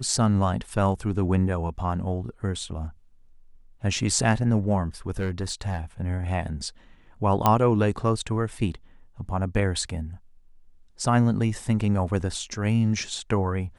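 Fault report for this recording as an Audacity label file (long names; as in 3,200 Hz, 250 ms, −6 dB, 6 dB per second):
5.190000	5.790000	clipping −22.5 dBFS
7.460000	7.460000	click −6 dBFS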